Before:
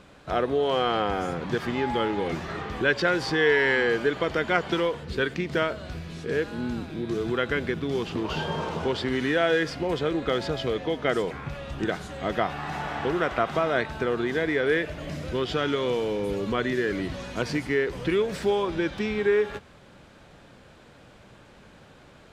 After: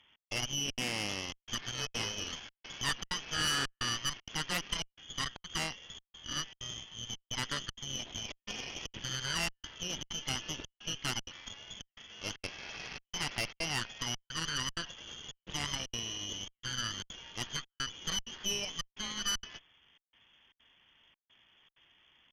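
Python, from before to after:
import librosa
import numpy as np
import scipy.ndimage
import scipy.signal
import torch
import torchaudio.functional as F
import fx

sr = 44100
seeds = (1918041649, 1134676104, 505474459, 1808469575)

y = fx.freq_invert(x, sr, carrier_hz=3400)
y = fx.peak_eq(y, sr, hz=490.0, db=-5.5, octaves=1.9)
y = fx.step_gate(y, sr, bpm=193, pattern='xx..xxxxx.xxxxx', floor_db=-60.0, edge_ms=4.5)
y = fx.high_shelf(y, sr, hz=2100.0, db=-9.0)
y = fx.cheby_harmonics(y, sr, harmonics=(8,), levels_db=(-10,), full_scale_db=-12.0)
y = y * librosa.db_to_amplitude(-8.5)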